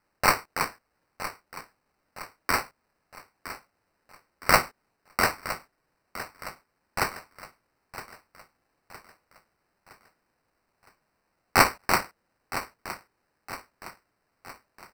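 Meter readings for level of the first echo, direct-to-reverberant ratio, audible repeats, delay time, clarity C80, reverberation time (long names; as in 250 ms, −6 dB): −13.5 dB, no reverb audible, 4, 964 ms, no reverb audible, no reverb audible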